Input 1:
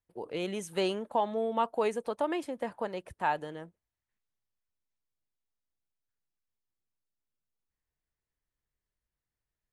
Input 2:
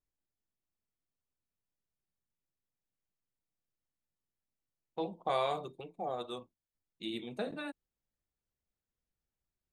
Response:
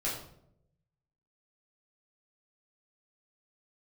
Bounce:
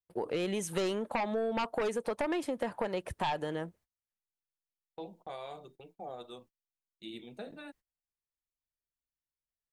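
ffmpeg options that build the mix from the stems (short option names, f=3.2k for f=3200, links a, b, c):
-filter_complex "[0:a]aeval=exprs='0.158*sin(PI/2*2.51*val(0)/0.158)':c=same,volume=-3.5dB[a];[1:a]equalizer=f=1.1k:w=7.6:g=-5.5,alimiter=level_in=3dB:limit=-24dB:level=0:latency=1:release=447,volume=-3dB,volume=-5.5dB[b];[a][b]amix=inputs=2:normalize=0,agate=range=-22dB:threshold=-58dB:ratio=16:detection=peak,acompressor=threshold=-30dB:ratio=6"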